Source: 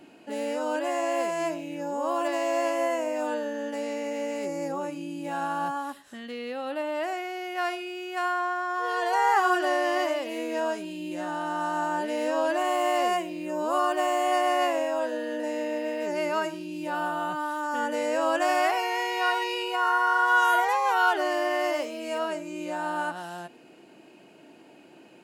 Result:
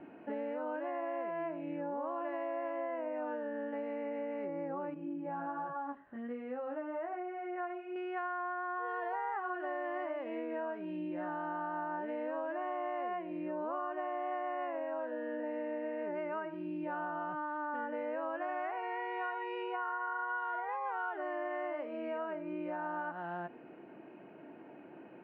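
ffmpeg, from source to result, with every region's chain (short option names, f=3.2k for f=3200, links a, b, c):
-filter_complex "[0:a]asettb=1/sr,asplit=3[a][b][c];[a]atrim=end=4.944[d];[b]atrim=start=4.94:end=7.96,asetpts=PTS-STARTPTS,afade=t=in:d=0.004:c=qsin,afade=t=out:st=3.016:d=0.004:c=qsin,lowpass=f=1.3k:p=1,flanger=delay=19.5:depth=3.1:speed=1.3[e];[c]atrim=start=7.956[f];[d][e]acrossfade=d=0.004:c1=hsin:c2=qsin[g];[g][f]acrossfade=d=0.004:c1=qsin:c2=hsin,lowpass=f=2k:w=0.5412,lowpass=f=2k:w=1.3066,acompressor=threshold=-36dB:ratio=6"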